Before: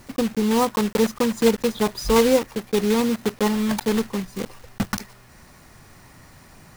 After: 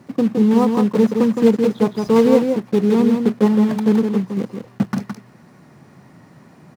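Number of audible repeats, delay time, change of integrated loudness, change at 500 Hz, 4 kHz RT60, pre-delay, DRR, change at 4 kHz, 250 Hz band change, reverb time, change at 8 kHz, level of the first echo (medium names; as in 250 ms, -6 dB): 1, 165 ms, +5.0 dB, +4.0 dB, no reverb, no reverb, no reverb, -6.5 dB, +7.5 dB, no reverb, no reading, -5.5 dB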